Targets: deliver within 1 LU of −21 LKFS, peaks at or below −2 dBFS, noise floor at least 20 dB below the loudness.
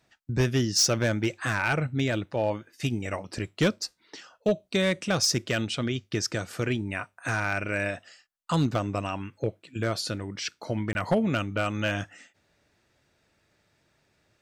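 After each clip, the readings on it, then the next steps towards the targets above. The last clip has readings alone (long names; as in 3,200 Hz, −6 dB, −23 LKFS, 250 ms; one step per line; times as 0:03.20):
share of clipped samples 0.3%; peaks flattened at −16.5 dBFS; number of dropouts 1; longest dropout 21 ms; integrated loudness −28.0 LKFS; sample peak −16.5 dBFS; target loudness −21.0 LKFS
→ clipped peaks rebuilt −16.5 dBFS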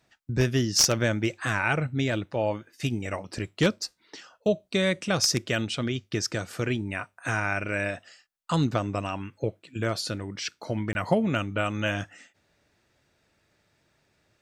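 share of clipped samples 0.0%; number of dropouts 1; longest dropout 21 ms
→ repair the gap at 0:10.93, 21 ms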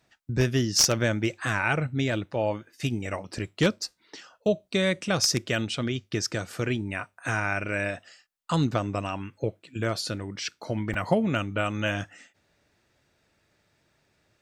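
number of dropouts 0; integrated loudness −27.5 LKFS; sample peak −7.5 dBFS; target loudness −21.0 LKFS
→ level +6.5 dB
brickwall limiter −2 dBFS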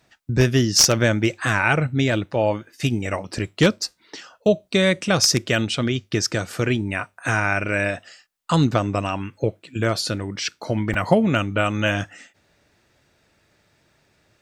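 integrated loudness −21.5 LKFS; sample peak −2.0 dBFS; background noise floor −65 dBFS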